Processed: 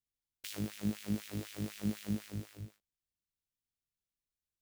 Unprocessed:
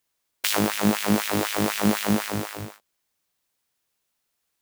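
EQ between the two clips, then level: amplifier tone stack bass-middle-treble 10-0-1; treble shelf 5.8 kHz -4.5 dB; +3.5 dB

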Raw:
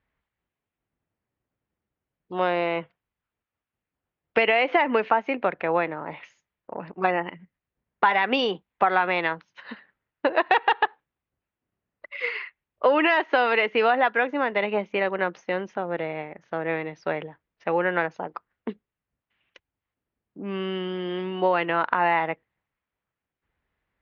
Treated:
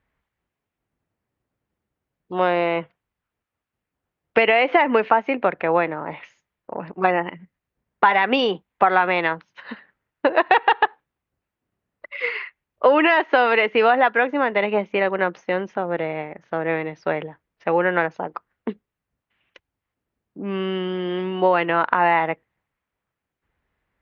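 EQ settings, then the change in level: treble shelf 4 kHz -5.5 dB; +4.5 dB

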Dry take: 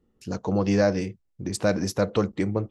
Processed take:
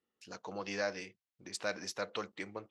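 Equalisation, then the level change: band-pass filter 2.8 kHz, Q 0.66; -4.0 dB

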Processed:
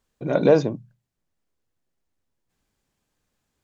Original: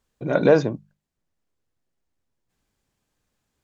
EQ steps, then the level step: hum notches 60/120 Hz; dynamic bell 1.6 kHz, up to -6 dB, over -38 dBFS, Q 1.8; 0.0 dB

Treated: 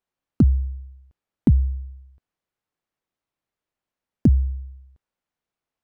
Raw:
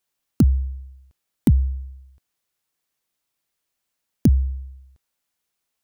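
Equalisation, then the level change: low-pass 1.2 kHz 6 dB/octave; 0.0 dB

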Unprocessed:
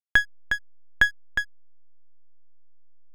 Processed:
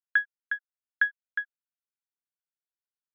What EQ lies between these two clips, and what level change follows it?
ladder high-pass 1.4 kHz, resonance 80%; brick-wall FIR low-pass 4.1 kHz; distance through air 240 m; -2.0 dB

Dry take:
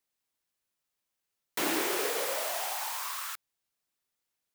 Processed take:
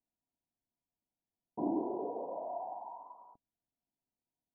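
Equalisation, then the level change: rippled Chebyshev low-pass 1 kHz, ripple 9 dB; distance through air 430 m; bass shelf 180 Hz +9 dB; +2.5 dB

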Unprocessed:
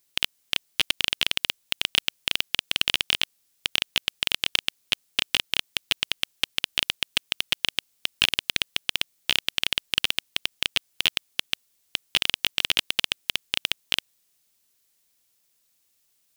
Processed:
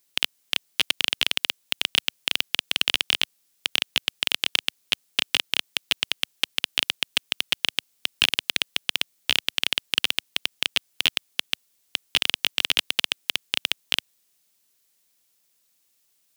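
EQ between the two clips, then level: high-pass 120 Hz 12 dB/octave; +1.0 dB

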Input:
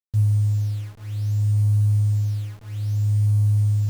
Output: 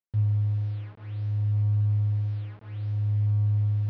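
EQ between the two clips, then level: Gaussian low-pass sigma 2.4 samples; high-pass 160 Hz 6 dB/octave; distance through air 120 m; 0.0 dB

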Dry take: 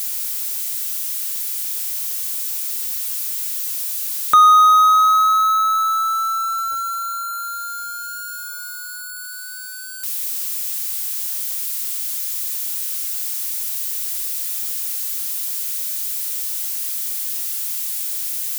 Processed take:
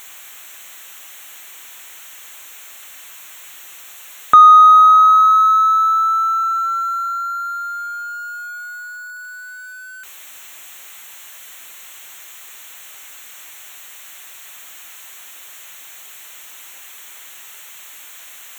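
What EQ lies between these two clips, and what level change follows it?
boxcar filter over 9 samples; +5.0 dB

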